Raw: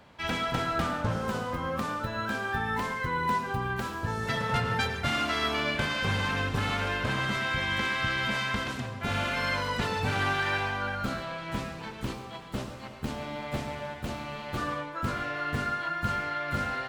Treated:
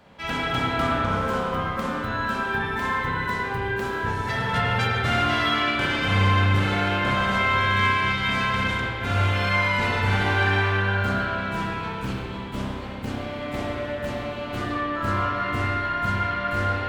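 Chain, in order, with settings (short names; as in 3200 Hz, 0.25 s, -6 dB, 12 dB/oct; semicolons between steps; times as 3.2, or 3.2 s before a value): spring tank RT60 2.3 s, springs 31/51 ms, chirp 30 ms, DRR -5 dB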